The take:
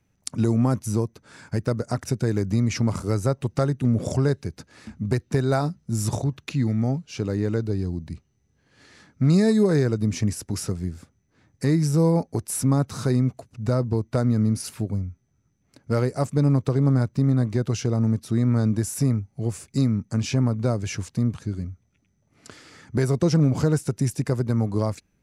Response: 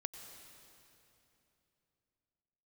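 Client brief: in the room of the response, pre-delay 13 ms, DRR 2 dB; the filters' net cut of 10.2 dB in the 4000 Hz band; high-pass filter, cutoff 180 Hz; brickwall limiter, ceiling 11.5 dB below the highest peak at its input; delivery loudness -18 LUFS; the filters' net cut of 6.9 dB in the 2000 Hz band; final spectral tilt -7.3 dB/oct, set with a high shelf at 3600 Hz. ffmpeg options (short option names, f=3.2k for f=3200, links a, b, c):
-filter_complex "[0:a]highpass=180,equalizer=f=2k:t=o:g=-6,highshelf=f=3.6k:g=-8,equalizer=f=4k:t=o:g=-6,alimiter=limit=-21.5dB:level=0:latency=1,asplit=2[a][b];[1:a]atrim=start_sample=2205,adelay=13[c];[b][c]afir=irnorm=-1:irlink=0,volume=0dB[d];[a][d]amix=inputs=2:normalize=0,volume=12dB"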